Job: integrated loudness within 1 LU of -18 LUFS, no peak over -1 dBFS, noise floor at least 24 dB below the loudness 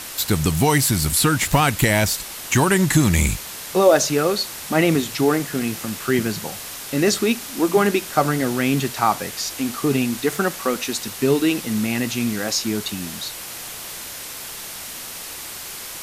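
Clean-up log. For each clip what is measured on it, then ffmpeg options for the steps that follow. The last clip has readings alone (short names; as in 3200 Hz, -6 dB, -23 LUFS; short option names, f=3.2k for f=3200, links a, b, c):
noise floor -34 dBFS; noise floor target -45 dBFS; loudness -21.0 LUFS; peak -3.5 dBFS; loudness target -18.0 LUFS
-> -af "afftdn=nr=11:nf=-34"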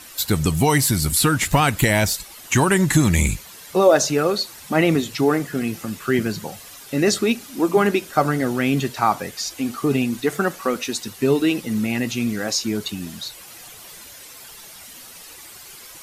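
noise floor -42 dBFS; noise floor target -45 dBFS
-> -af "afftdn=nr=6:nf=-42"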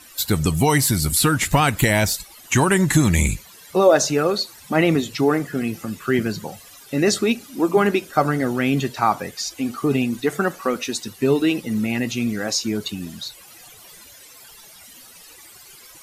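noise floor -45 dBFS; loudness -20.5 LUFS; peak -4.0 dBFS; loudness target -18.0 LUFS
-> -af "volume=2.5dB"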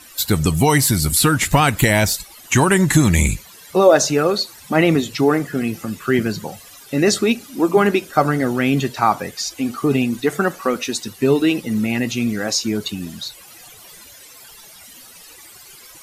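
loudness -18.0 LUFS; peak -1.5 dBFS; noise floor -43 dBFS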